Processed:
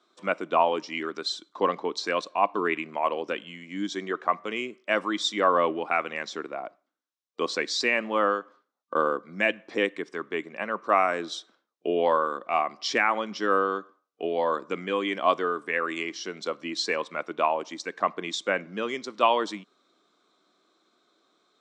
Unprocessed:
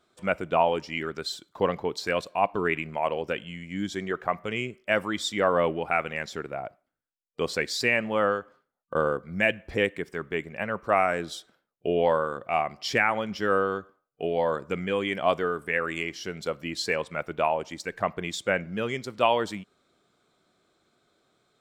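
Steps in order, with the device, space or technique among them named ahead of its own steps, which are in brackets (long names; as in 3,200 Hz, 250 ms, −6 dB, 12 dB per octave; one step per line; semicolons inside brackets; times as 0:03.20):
television speaker (loudspeaker in its box 210–7,800 Hz, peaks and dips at 310 Hz +5 dB, 1,100 Hz +8 dB, 3,800 Hz +6 dB, 5,800 Hz +5 dB)
level −1.5 dB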